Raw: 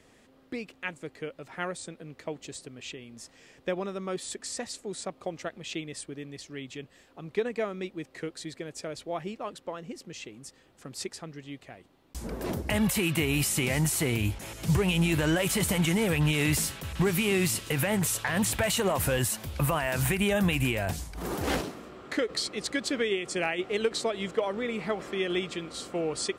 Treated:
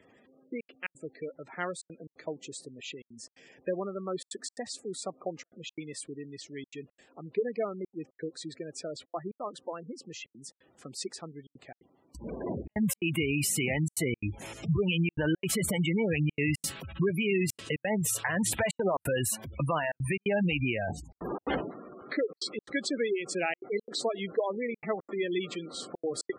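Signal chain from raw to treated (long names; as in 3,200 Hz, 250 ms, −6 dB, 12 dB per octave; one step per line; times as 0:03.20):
high-pass filter 150 Hz 6 dB per octave
gate on every frequency bin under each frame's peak −15 dB strong
gate pattern "xxxxxxx.xx.xxx" 174 BPM −60 dB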